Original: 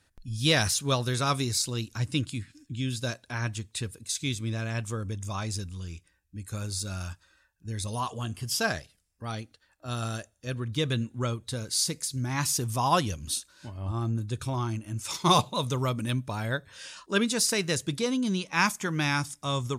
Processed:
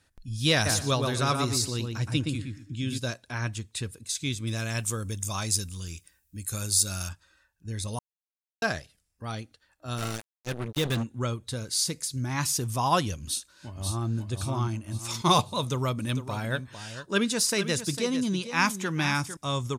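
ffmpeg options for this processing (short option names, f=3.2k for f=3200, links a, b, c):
-filter_complex "[0:a]asplit=3[a][b][c];[a]afade=t=out:st=0.65:d=0.02[d];[b]asplit=2[e][f];[f]adelay=120,lowpass=f=2k:p=1,volume=-3dB,asplit=2[g][h];[h]adelay=120,lowpass=f=2k:p=1,volume=0.22,asplit=2[i][j];[j]adelay=120,lowpass=f=2k:p=1,volume=0.22[k];[e][g][i][k]amix=inputs=4:normalize=0,afade=t=in:st=0.65:d=0.02,afade=t=out:st=2.97:d=0.02[l];[c]afade=t=in:st=2.97:d=0.02[m];[d][l][m]amix=inputs=3:normalize=0,asettb=1/sr,asplit=3[n][o][p];[n]atrim=end=4.474[q];[o]atrim=start=4.47:end=7.09,asetpts=PTS-STARTPTS,afade=t=in:d=0.004:c=qsin,afade=t=out:st=2.616:d=0.004:c=qsin,aemphasis=mode=production:type=75kf[r];[p]atrim=start=7.086[s];[q][r]acrossfade=d=0.004:c1=hsin:c2=qsin[t];[t][s]acrossfade=d=0.004:c1=qsin:c2=hsin,asplit=3[u][v][w];[u]afade=t=out:st=9.97:d=0.02[x];[v]acrusher=bits=4:mix=0:aa=0.5,afade=t=in:st=9.97:d=0.02,afade=t=out:st=11.02:d=0.02[y];[w]afade=t=in:st=11.02:d=0.02[z];[x][y][z]amix=inputs=3:normalize=0,asplit=2[aa][ab];[ab]afade=t=in:st=13.22:d=0.01,afade=t=out:st=14.13:d=0.01,aecho=0:1:540|1080|1620|2160|2700|3240:0.595662|0.268048|0.120622|0.0542797|0.0244259|0.0109916[ac];[aa][ac]amix=inputs=2:normalize=0,asettb=1/sr,asplit=3[ad][ae][af];[ad]atrim=end=15.674[ag];[ae]atrim=start=15.67:end=19.37,asetpts=PTS-STARTPTS,afade=t=in:d=0.004:c=qsin,afade=t=out:st=3.696:d=0.004:c=qsin,aecho=1:1:452:0.282,atrim=end_sample=163170[ah];[af]atrim=start=19.366[ai];[ag][ah]acrossfade=d=0.004:c1=hsin:c2=qsin[aj];[aj][ai]acrossfade=d=0.004:c1=qsin:c2=hsin,asplit=3[ak][al][am];[ak]atrim=end=7.99,asetpts=PTS-STARTPTS,afade=t=out:st=7.986:d=0.004:c=hsin[an];[al]atrim=start=7.99:end=8.62,asetpts=PTS-STARTPTS,volume=0[ao];[am]atrim=start=8.62,asetpts=PTS-STARTPTS,afade=t=in:d=0.004:c=hsin[ap];[an][ao][ap]concat=n=3:v=0:a=1"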